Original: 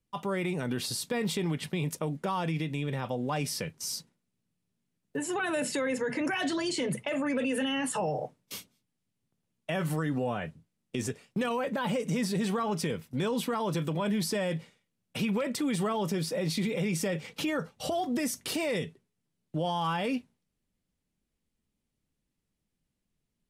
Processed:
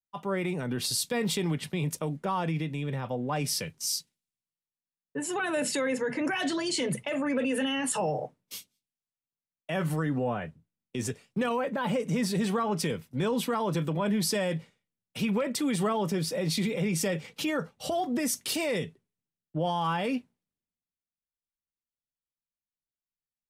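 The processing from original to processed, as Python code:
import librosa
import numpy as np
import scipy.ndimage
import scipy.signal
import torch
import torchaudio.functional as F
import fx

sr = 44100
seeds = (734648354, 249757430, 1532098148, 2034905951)

y = fx.band_widen(x, sr, depth_pct=70)
y = y * librosa.db_to_amplitude(1.5)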